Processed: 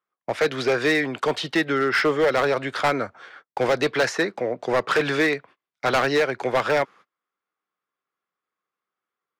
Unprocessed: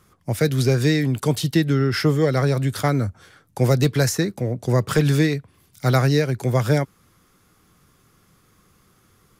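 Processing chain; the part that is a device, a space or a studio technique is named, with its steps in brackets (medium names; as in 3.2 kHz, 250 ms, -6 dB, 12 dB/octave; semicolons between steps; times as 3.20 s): walkie-talkie (band-pass 590–2600 Hz; hard clipper -23.5 dBFS, distortion -10 dB; gate -53 dBFS, range -31 dB); trim +8.5 dB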